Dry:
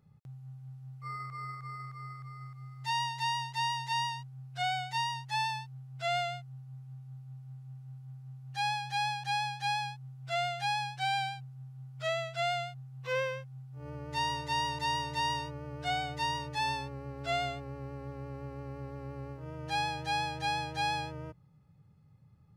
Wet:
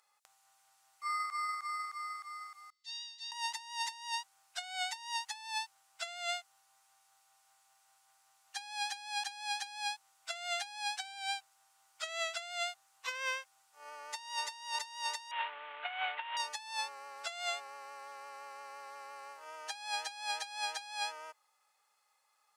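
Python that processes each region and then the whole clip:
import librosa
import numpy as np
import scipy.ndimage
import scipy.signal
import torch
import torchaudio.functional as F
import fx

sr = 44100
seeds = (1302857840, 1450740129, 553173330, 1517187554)

y = fx.chain(x, sr, fx.ladder_bandpass(hz=4700.0, resonance_pct=45),
    fx.high_shelf(hz=3000.0, db=-10.5), at=(2.7, 3.32))
y = fx.chain(y, sr, fx.cvsd(bps=16000),
    fx.highpass(hz=140.0, slope=12), at=(15.31, 16.37))
y = scipy.signal.sosfilt(scipy.signal.butter(4, 780.0, 'highpass', fs=sr, output='sos'), y)
y = fx.peak_eq(y, sr, hz=7900.0, db=11.0, octaves=1.5)
y = fx.over_compress(y, sr, threshold_db=-38.0, ratio=-0.5)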